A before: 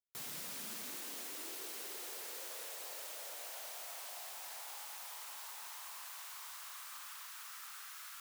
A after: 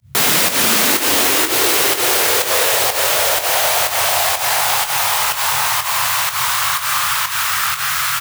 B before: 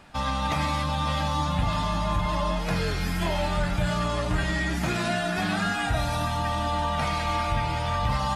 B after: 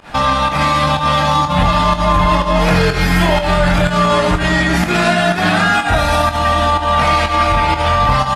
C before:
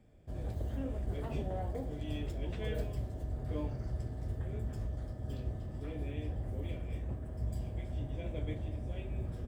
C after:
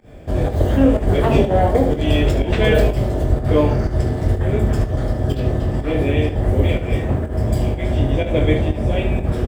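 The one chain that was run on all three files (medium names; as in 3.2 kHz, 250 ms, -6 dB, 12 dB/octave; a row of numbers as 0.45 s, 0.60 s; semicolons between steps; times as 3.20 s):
tone controls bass -5 dB, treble -5 dB; hum notches 60/120 Hz; peak limiter -25 dBFS; band noise 66–150 Hz -76 dBFS; volume shaper 124 bpm, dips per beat 1, -23 dB, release 120 ms; on a send: early reflections 22 ms -8 dB, 74 ms -10.5 dB; on the sum: peak normalisation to -1.5 dBFS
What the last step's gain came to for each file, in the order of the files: +33.5 dB, +19.5 dB, +25.0 dB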